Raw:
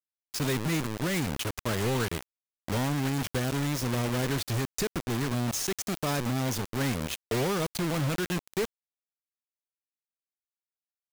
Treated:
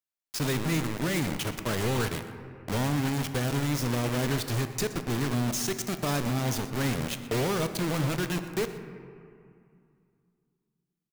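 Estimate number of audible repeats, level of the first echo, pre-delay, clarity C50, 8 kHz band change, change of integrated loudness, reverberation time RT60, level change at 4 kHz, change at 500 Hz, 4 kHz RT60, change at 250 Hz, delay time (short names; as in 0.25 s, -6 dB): 1, -18.5 dB, 3 ms, 9.0 dB, 0.0 dB, +1.0 dB, 2.4 s, +0.5 dB, +0.5 dB, 1.4 s, +1.0 dB, 0.122 s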